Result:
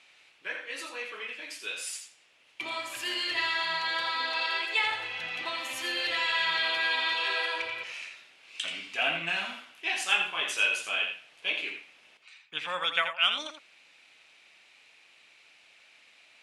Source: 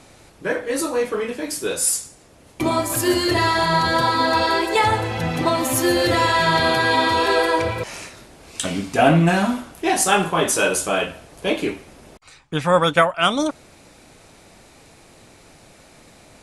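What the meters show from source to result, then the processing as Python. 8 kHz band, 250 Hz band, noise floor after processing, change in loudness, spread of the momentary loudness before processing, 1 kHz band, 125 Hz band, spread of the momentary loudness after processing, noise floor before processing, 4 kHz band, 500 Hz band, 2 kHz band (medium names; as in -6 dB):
-17.5 dB, -27.5 dB, -60 dBFS, -10.0 dB, 10 LU, -15.5 dB, -33.0 dB, 12 LU, -49 dBFS, -4.0 dB, -21.0 dB, -5.5 dB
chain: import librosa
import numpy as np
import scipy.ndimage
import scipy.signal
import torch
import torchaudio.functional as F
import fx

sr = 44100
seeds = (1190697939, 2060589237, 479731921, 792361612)

y = fx.bandpass_q(x, sr, hz=2700.0, q=2.7)
y = y + 10.0 ** (-8.0 / 20.0) * np.pad(y, (int(83 * sr / 1000.0), 0))[:len(y)]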